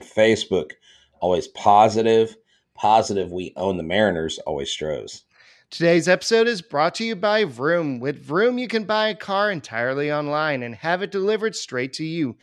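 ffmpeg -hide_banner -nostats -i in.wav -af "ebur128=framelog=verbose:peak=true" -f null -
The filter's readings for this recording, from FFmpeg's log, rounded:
Integrated loudness:
  I:         -21.2 LUFS
  Threshold: -31.6 LUFS
Loudness range:
  LRA:         3.6 LU
  Threshold: -41.5 LUFS
  LRA low:   -23.3 LUFS
  LRA high:  -19.8 LUFS
True peak:
  Peak:       -1.7 dBFS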